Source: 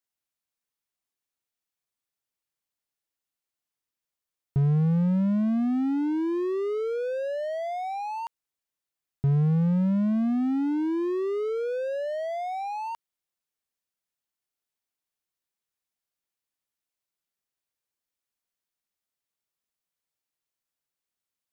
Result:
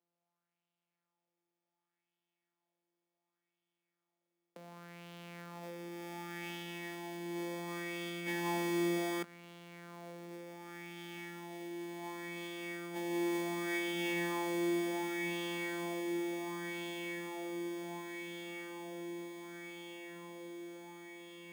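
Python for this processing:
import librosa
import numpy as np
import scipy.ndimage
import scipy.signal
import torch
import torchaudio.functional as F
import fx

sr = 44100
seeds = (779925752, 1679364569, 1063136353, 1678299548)

p1 = np.r_[np.sort(x[:len(x) // 256 * 256].reshape(-1, 256), axis=1).ravel(), x[len(x) // 256 * 256:]]
p2 = fx.high_shelf(p1, sr, hz=3700.0, db=11.0)
p3 = fx.comb_fb(p2, sr, f0_hz=560.0, decay_s=0.44, harmonics='all', damping=0.0, mix_pct=70)
p4 = p3 + fx.echo_diffused(p3, sr, ms=1114, feedback_pct=74, wet_db=-5.5, dry=0)
p5 = fx.over_compress(p4, sr, threshold_db=-40.0, ratio=-0.5)
p6 = scipy.signal.sosfilt(scipy.signal.cheby1(6, 3, 170.0, 'highpass', fs=sr, output='sos'), p5)
p7 = fx.bass_treble(p6, sr, bass_db=-1, treble_db=-9)
p8 = fx.bell_lfo(p7, sr, hz=0.68, low_hz=400.0, high_hz=3100.0, db=10)
y = p8 * 10.0 ** (2.5 / 20.0)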